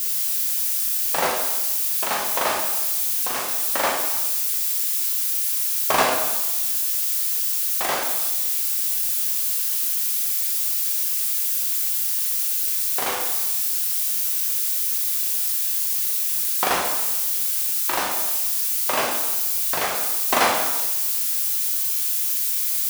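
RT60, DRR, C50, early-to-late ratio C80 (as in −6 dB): 1.1 s, −0.5 dB, 3.5 dB, 5.5 dB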